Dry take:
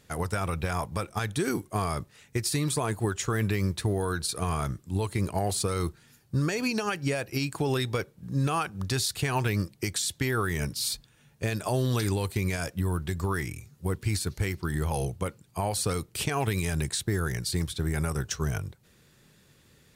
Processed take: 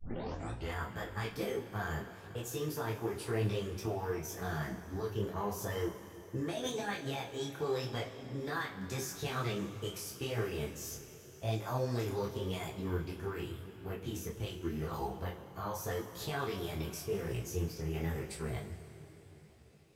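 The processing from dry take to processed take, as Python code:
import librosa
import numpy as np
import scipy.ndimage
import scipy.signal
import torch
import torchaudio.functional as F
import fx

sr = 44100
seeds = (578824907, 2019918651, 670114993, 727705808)

y = fx.tape_start_head(x, sr, length_s=0.73)
y = fx.high_shelf(y, sr, hz=4400.0, db=-9.0)
y = fx.formant_shift(y, sr, semitones=6)
y = fx.rev_double_slope(y, sr, seeds[0], early_s=0.26, late_s=4.0, knee_db=-18, drr_db=0.5)
y = fx.detune_double(y, sr, cents=30)
y = y * 10.0 ** (-7.0 / 20.0)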